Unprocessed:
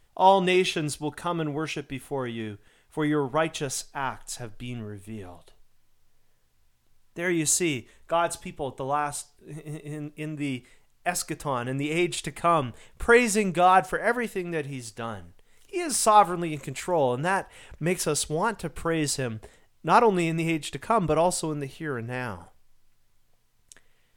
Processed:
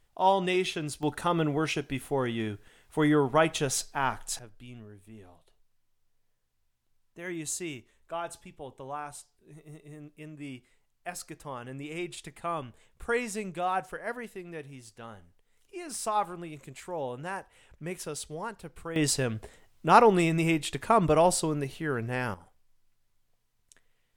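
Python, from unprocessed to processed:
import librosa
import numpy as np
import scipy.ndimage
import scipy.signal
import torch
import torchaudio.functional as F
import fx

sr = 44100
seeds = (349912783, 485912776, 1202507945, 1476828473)

y = fx.gain(x, sr, db=fx.steps((0.0, -5.5), (1.03, 1.5), (4.39, -11.0), (18.96, 0.5), (22.34, -8.0)))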